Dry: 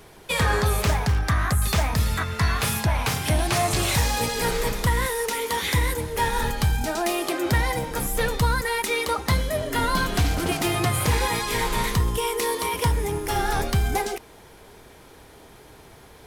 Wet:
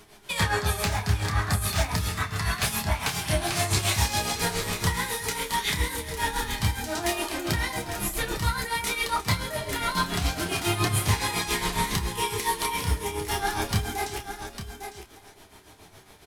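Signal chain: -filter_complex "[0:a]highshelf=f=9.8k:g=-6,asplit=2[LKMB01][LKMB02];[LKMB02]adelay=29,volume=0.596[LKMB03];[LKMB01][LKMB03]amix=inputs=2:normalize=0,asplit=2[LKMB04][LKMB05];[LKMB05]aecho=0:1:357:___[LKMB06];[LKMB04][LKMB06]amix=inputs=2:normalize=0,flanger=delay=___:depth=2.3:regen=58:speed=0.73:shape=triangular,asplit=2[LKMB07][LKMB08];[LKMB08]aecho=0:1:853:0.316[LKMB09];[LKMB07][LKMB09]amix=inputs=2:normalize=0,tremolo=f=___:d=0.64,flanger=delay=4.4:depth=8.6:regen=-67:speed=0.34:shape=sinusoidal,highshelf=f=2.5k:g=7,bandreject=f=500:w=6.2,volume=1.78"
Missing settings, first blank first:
0.2, 9.2, 7.2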